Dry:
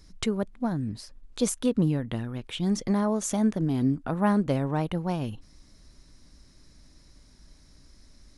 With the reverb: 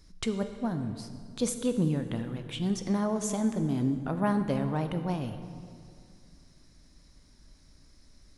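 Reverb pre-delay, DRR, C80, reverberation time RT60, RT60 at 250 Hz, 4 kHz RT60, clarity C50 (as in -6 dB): 11 ms, 7.5 dB, 10.0 dB, 2.2 s, 2.5 s, 1.6 s, 9.0 dB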